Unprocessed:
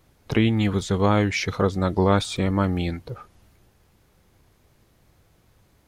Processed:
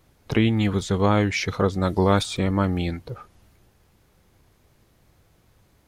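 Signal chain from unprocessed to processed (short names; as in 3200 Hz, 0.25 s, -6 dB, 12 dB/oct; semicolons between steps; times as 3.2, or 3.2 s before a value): 1.83–2.23 high shelf 6300 Hz +9.5 dB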